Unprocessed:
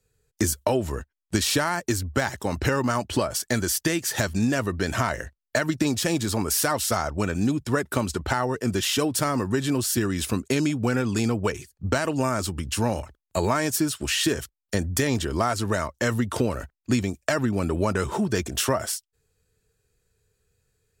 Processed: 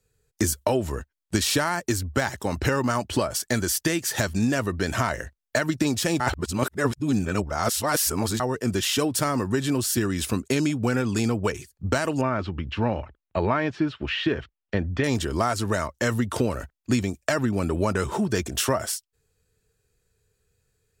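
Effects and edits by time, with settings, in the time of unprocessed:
0:06.20–0:08.40: reverse
0:12.21–0:15.04: low-pass filter 3,200 Hz 24 dB per octave

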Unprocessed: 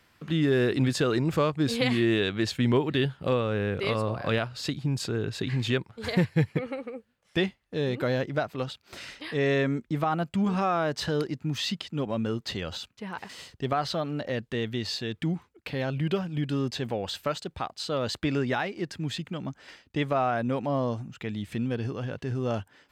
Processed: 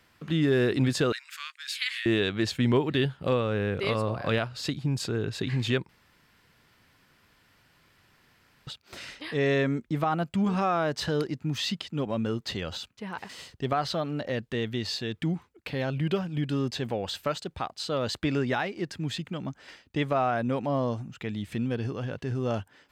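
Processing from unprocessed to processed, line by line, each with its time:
0:01.12–0:02.06: Butterworth high-pass 1,500 Hz
0:05.89–0:08.67: fill with room tone

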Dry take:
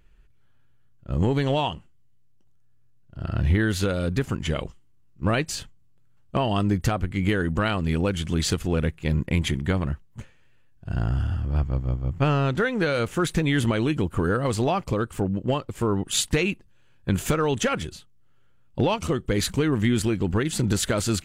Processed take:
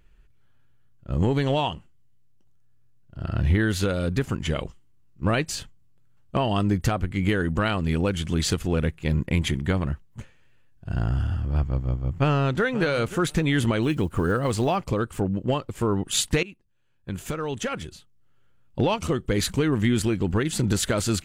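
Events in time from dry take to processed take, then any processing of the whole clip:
0:12.17–0:12.63: delay throw 530 ms, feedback 15%, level −14.5 dB
0:13.83–0:14.77: one scale factor per block 7 bits
0:16.43–0:18.93: fade in, from −18.5 dB

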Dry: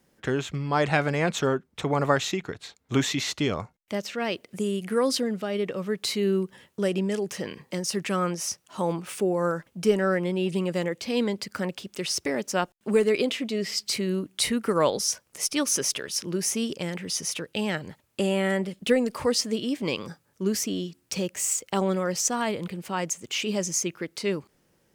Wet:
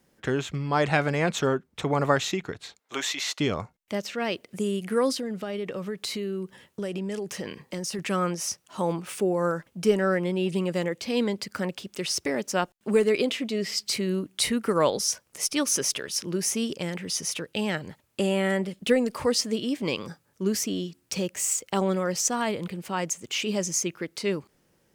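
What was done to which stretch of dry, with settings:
0:02.79–0:03.40: high-pass filter 610 Hz
0:05.12–0:07.99: downward compressor 4 to 1, threshold −28 dBFS

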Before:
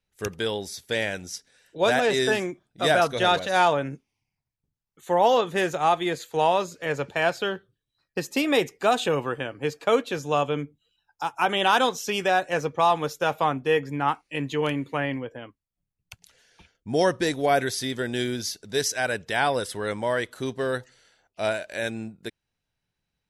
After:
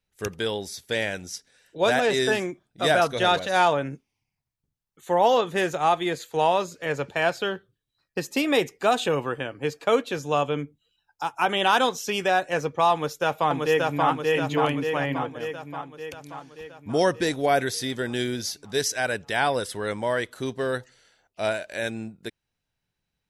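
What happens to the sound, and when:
0:12.92–0:14.07: delay throw 580 ms, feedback 60%, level −1.5 dB

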